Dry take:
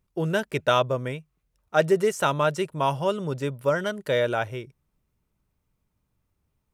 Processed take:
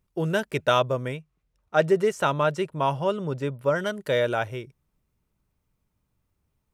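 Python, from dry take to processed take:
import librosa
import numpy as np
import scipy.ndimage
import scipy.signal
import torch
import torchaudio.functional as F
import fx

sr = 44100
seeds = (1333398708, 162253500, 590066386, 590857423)

y = fx.high_shelf(x, sr, hz=fx.line((1.16, 8200.0), (3.74, 4300.0)), db=-9.5, at=(1.16, 3.74), fade=0.02)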